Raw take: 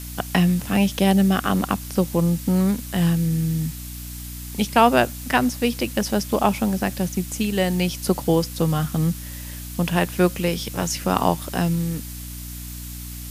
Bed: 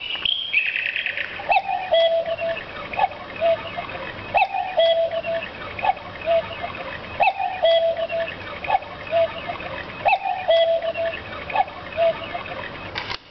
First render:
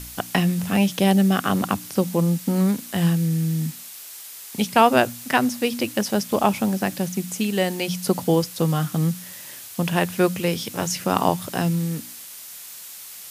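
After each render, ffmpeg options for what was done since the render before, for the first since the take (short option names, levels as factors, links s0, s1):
-af "bandreject=f=60:t=h:w=4,bandreject=f=120:t=h:w=4,bandreject=f=180:t=h:w=4,bandreject=f=240:t=h:w=4,bandreject=f=300:t=h:w=4"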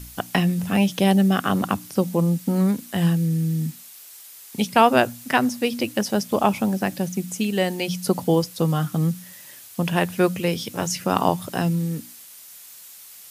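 -af "afftdn=nr=6:nf=-39"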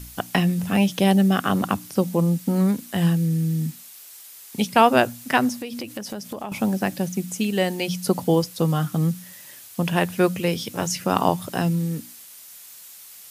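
-filter_complex "[0:a]asettb=1/sr,asplit=3[s0][s1][s2];[s0]atrim=end=5.594[s3];[s1]atrim=start=5.59:end=6.52,asetpts=PTS-STARTPTS,afade=t=in:d=0.004:c=qsin,afade=t=out:st=0.926:d=0.004:c=qsin,acompressor=threshold=0.0398:ratio=6:attack=3.2:release=140:knee=1:detection=peak[s4];[s2]atrim=start=6.516[s5];[s3][s4]acrossfade=d=0.004:c1=hsin:c2=qsin[s6];[s6][s5]acrossfade=d=0.004:c1=qsin:c2=hsin"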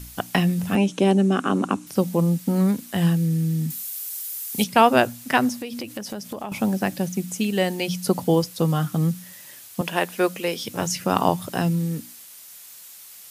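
-filter_complex "[0:a]asettb=1/sr,asplit=3[s0][s1][s2];[s0]atrim=end=0.754[s3];[s1]atrim=start=0.75:end=1.87,asetpts=PTS-STARTPTS,afade=t=in:d=0.004:c=qsin,afade=t=out:st=1.116:d=0.004:c=qsin,highpass=190,equalizer=f=270:t=q:w=4:g=7,equalizer=f=380:t=q:w=4:g=5,equalizer=f=690:t=q:w=4:g=-4,equalizer=f=1900:t=q:w=4:g=-7,equalizer=f=3400:t=q:w=4:g=-6,equalizer=f=4800:t=q:w=4:g=-9,lowpass=f=8800:w=0.5412,lowpass=f=8800:w=1.3066[s4];[s2]atrim=start=1.866[s5];[s3][s4]acrossfade=d=0.004:c1=hsin:c2=qsin[s6];[s6][s5]acrossfade=d=0.004:c1=qsin:c2=hsin,asettb=1/sr,asplit=3[s7][s8][s9];[s7]atrim=end=3.704[s10];[s8]atrim=start=3.7:end=4.64,asetpts=PTS-STARTPTS,afade=t=in:d=0.004:c=qsin,afade=t=out:st=0.936:d=0.004:c=qsin,aemphasis=mode=production:type=50kf[s11];[s9]atrim=start=4.636[s12];[s10][s11]acrossfade=d=0.004:c1=hsin:c2=qsin[s13];[s13][s12]acrossfade=d=0.004:c1=qsin:c2=hsin,asettb=1/sr,asplit=3[s14][s15][s16];[s14]atrim=end=9.814[s17];[s15]atrim=start=9.81:end=10.65,asetpts=PTS-STARTPTS,afade=t=in:d=0.004:c=qsin,afade=t=out:st=0.836:d=0.004:c=qsin,highpass=320[s18];[s16]atrim=start=10.646[s19];[s17][s18]acrossfade=d=0.004:c1=hsin:c2=qsin[s20];[s20][s19]acrossfade=d=0.004:c1=qsin:c2=hsin"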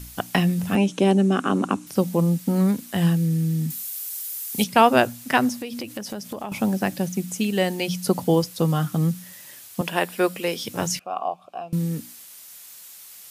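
-filter_complex "[0:a]asettb=1/sr,asplit=3[s0][s1][s2];[s0]atrim=end=9.894[s3];[s1]atrim=start=9.89:end=10.42,asetpts=PTS-STARTPTS,afade=t=in:d=0.004:c=qsin,afade=t=out:st=0.526:d=0.004:c=qsin,bandreject=f=6300:w=8.1[s4];[s2]atrim=start=10.416[s5];[s3][s4]acrossfade=d=0.004:c1=hsin:c2=qsin[s6];[s6][s5]acrossfade=d=0.004:c1=qsin:c2=hsin,asettb=1/sr,asplit=3[s7][s8][s9];[s7]atrim=end=10.994[s10];[s8]atrim=start=10.99:end=11.73,asetpts=PTS-STARTPTS,afade=t=in:d=0.004:c=qsin,afade=t=out:st=0.736:d=0.004:c=qsin,asplit=3[s11][s12][s13];[s11]bandpass=f=730:t=q:w=8,volume=1[s14];[s12]bandpass=f=1090:t=q:w=8,volume=0.501[s15];[s13]bandpass=f=2440:t=q:w=8,volume=0.355[s16];[s14][s15][s16]amix=inputs=3:normalize=0[s17];[s9]atrim=start=11.726[s18];[s10][s17]acrossfade=d=0.004:c1=hsin:c2=qsin[s19];[s19][s18]acrossfade=d=0.004:c1=qsin:c2=hsin"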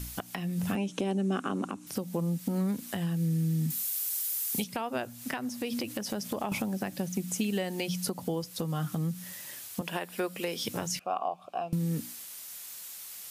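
-af "acompressor=threshold=0.0501:ratio=6,alimiter=limit=0.112:level=0:latency=1:release=282"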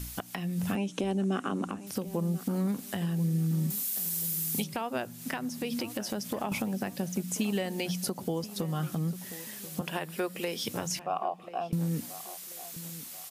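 -filter_complex "[0:a]asplit=2[s0][s1];[s1]adelay=1036,lowpass=f=1800:p=1,volume=0.178,asplit=2[s2][s3];[s3]adelay=1036,lowpass=f=1800:p=1,volume=0.42,asplit=2[s4][s5];[s5]adelay=1036,lowpass=f=1800:p=1,volume=0.42,asplit=2[s6][s7];[s7]adelay=1036,lowpass=f=1800:p=1,volume=0.42[s8];[s0][s2][s4][s6][s8]amix=inputs=5:normalize=0"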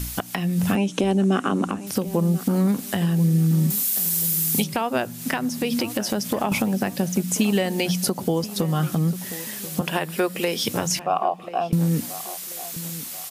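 -af "volume=2.99"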